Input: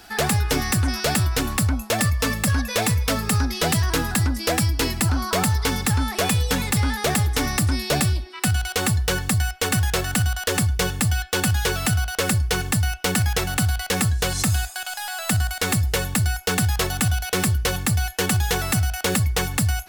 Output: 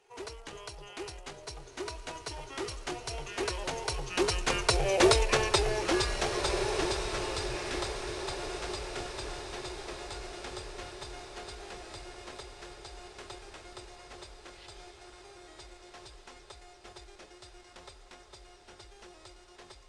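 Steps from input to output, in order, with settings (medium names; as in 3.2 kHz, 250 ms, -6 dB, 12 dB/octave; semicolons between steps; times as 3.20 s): Doppler pass-by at 5.08 s, 23 m/s, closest 11 m; resonant low shelf 560 Hz -7.5 dB, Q 3; short-mantissa float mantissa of 2-bit; pitch shift -11.5 st; echo that smears into a reverb 1575 ms, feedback 53%, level -8 dB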